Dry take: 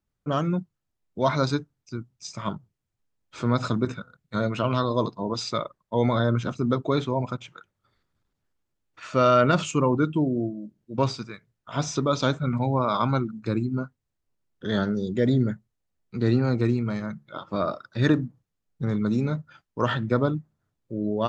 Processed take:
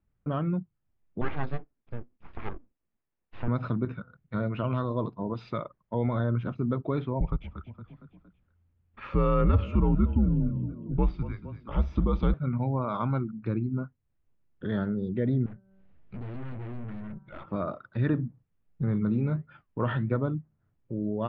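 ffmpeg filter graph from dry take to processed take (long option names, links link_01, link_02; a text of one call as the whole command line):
ffmpeg -i in.wav -filter_complex "[0:a]asettb=1/sr,asplit=3[link_01][link_02][link_03];[link_01]atrim=end=1.214[link_04];[link_02]atrim=start=1.21:end=3.48,asetpts=PTS-STARTPTS,afade=type=in:duration=0.004:curve=qsin,afade=type=out:start_time=2.266:duration=0.004:curve=qsin,highpass=100,lowpass=3400,aeval=exprs='abs(val(0))':channel_layout=same[link_05];[link_03]atrim=start=3.476[link_06];[link_04][link_05]acrossfade=duration=0.004:curve1=hsin:curve2=qsin[link_07];[link_07][link_06]acrossfade=duration=0.004:curve1=qsin:curve2=hsin,asettb=1/sr,asplit=3[link_08][link_09][link_10];[link_08]atrim=end=7.204[link_11];[link_09]atrim=start=7.2:end=12.34,asetpts=PTS-STARTPTS,afade=type=in:duration=0.004:curve=qsin,afade=type=out:start_time=5.136:duration=0.004:curve=qsin,equalizer=frequency=180:width=0.67:gain=8,afreqshift=-86,asplit=5[link_12][link_13][link_14][link_15][link_16];[link_13]adelay=231,afreqshift=35,volume=-17dB[link_17];[link_14]adelay=462,afreqshift=70,volume=-23.6dB[link_18];[link_15]adelay=693,afreqshift=105,volume=-30.1dB[link_19];[link_16]adelay=924,afreqshift=140,volume=-36.7dB[link_20];[link_12][link_17][link_18][link_19][link_20]amix=inputs=5:normalize=0,atrim=end_sample=226674[link_21];[link_10]atrim=start=12.336[link_22];[link_11][link_21]acrossfade=duration=0.004:curve1=hsin:curve2=qsin[link_23];[link_23][link_22]acrossfade=duration=0.004:curve1=qsin:curve2=hsin,asettb=1/sr,asplit=3[link_24][link_25][link_26];[link_24]atrim=end=15.464[link_27];[link_25]atrim=start=15.46:end=17.46,asetpts=PTS-STARTPTS,afade=type=in:duration=0.004:curve=qsin,afade=type=out:start_time=1.996:duration=0.004:curve=qsin,bandreject=frequency=192.4:width_type=h:width=4,bandreject=frequency=384.8:width_type=h:width=4,bandreject=frequency=577.2:width_type=h:width=4,bandreject=frequency=769.6:width_type=h:width=4,bandreject=frequency=962:width_type=h:width=4,bandreject=frequency=1154.4:width_type=h:width=4,bandreject=frequency=1346.8:width_type=h:width=4,bandreject=frequency=1539.2:width_type=h:width=4,acompressor=mode=upward:threshold=-45dB:ratio=2.5:attack=3.2:release=140:knee=2.83:detection=peak,aeval=exprs='(tanh(79.4*val(0)+0.45)-tanh(0.45))/79.4':channel_layout=same[link_28];[link_26]atrim=start=17.456[link_29];[link_27][link_28]acrossfade=duration=0.004:curve1=hsin:curve2=qsin[link_30];[link_30][link_29]acrossfade=duration=0.004:curve1=qsin:curve2=hsin,asettb=1/sr,asplit=3[link_31][link_32][link_33];[link_31]atrim=end=18.124[link_34];[link_32]atrim=start=18.12:end=20.16,asetpts=PTS-STARTPTS,afade=type=in:duration=0.004:curve=qsin,afade=type=out:start_time=2.036:duration=0.004:curve=qsin,flanger=delay=4.8:depth=5.1:regen=-77:speed=1.4:shape=sinusoidal,acontrast=64[link_35];[link_33]atrim=start=20.156[link_36];[link_34][link_35]acrossfade=duration=0.004:curve1=hsin:curve2=qsin[link_37];[link_37][link_36]acrossfade=duration=0.004:curve1=qsin:curve2=hsin,lowpass=frequency=2800:width=0.5412,lowpass=frequency=2800:width=1.3066,lowshelf=frequency=240:gain=8,acompressor=threshold=-40dB:ratio=1.5" out.wav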